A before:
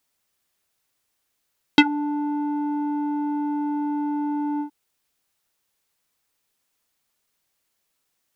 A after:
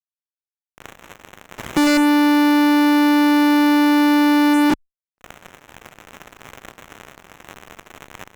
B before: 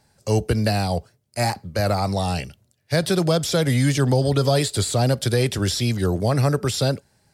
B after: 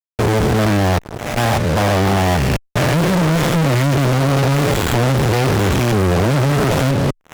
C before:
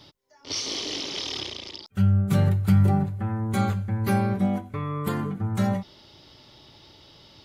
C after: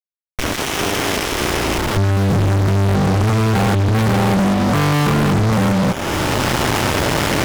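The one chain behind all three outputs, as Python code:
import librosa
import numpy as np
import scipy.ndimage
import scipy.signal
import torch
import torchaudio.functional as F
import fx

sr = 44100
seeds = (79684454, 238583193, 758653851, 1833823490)

y = fx.spec_steps(x, sr, hold_ms=200)
y = fx.recorder_agc(y, sr, target_db=-15.5, rise_db_per_s=36.0, max_gain_db=30)
y = fx.high_shelf(y, sr, hz=12000.0, db=-7.0)
y = fx.fuzz(y, sr, gain_db=40.0, gate_db=-41.0)
y = fx.cheby_harmonics(y, sr, harmonics=(5,), levels_db=(-25,), full_scale_db=-10.0)
y = fx.running_max(y, sr, window=9)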